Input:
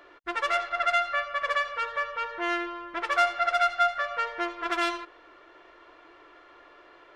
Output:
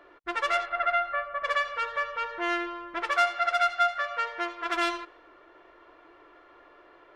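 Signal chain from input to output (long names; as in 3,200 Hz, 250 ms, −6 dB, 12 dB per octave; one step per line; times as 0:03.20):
0:00.65–0:01.43: low-pass filter 2,800 Hz → 1,300 Hz 12 dB per octave
0:03.11–0:04.74: low-shelf EQ 380 Hz −6.5 dB
one half of a high-frequency compander decoder only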